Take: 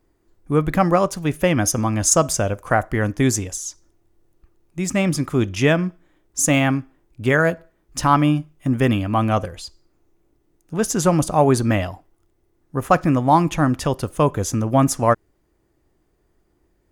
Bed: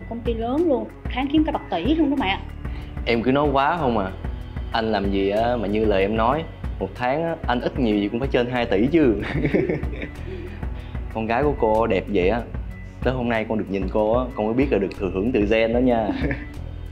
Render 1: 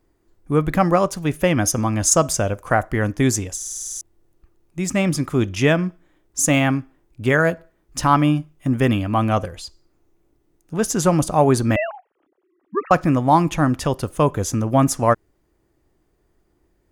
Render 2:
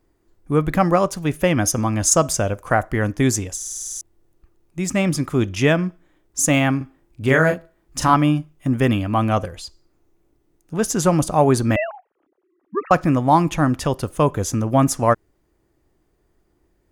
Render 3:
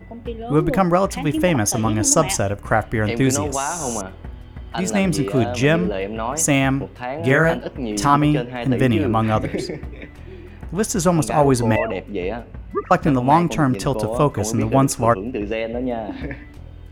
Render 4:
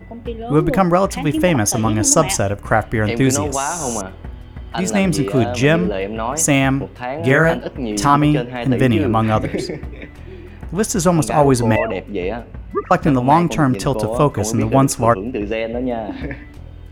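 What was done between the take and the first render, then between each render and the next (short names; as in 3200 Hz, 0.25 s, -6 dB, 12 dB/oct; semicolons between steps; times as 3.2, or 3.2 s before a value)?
3.56 stutter in place 0.05 s, 9 plays; 11.76–12.91 sine-wave speech
6.77–8.14 doubler 38 ms -5 dB; 11.84–12.82 air absorption 290 m
add bed -5.5 dB
gain +2.5 dB; limiter -1 dBFS, peak gain reduction 2 dB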